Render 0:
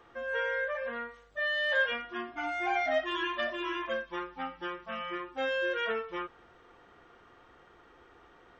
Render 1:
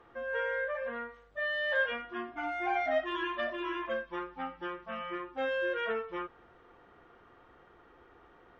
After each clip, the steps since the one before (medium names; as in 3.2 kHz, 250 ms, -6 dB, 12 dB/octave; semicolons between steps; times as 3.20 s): low-pass 2 kHz 6 dB/octave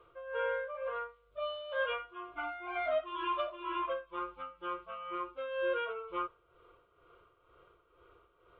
dynamic bell 1 kHz, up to +7 dB, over -47 dBFS, Q 1.1; tremolo 2.1 Hz, depth 66%; static phaser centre 1.2 kHz, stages 8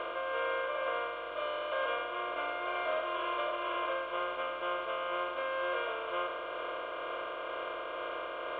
spectral levelling over time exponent 0.2; trim -6 dB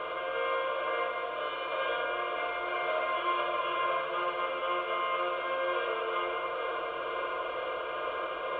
reverberation RT60 2.2 s, pre-delay 3 ms, DRR -1.5 dB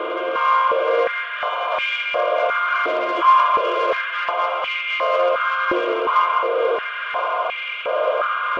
saturation -25 dBFS, distortion -19 dB; step-sequenced high-pass 2.8 Hz 330–2300 Hz; trim +9 dB